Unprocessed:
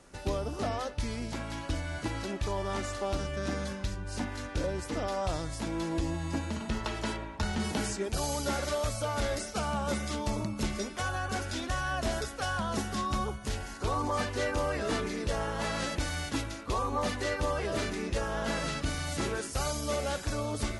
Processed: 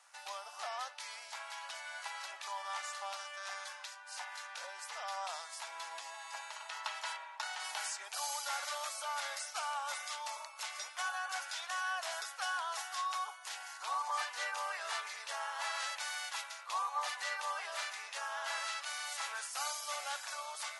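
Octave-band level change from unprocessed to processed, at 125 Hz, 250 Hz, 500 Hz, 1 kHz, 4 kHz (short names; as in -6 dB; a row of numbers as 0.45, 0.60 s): under -40 dB, under -40 dB, -17.0 dB, -3.5 dB, -2.5 dB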